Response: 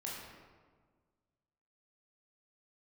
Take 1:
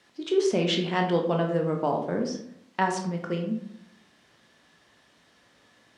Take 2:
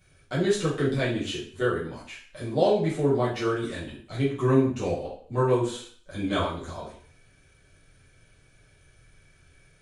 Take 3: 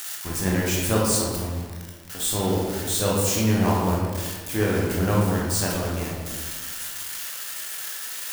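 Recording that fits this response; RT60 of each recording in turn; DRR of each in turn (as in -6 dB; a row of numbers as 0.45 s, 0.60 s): 3; 0.70 s, 0.50 s, 1.6 s; 2.0 dB, -9.0 dB, -5.0 dB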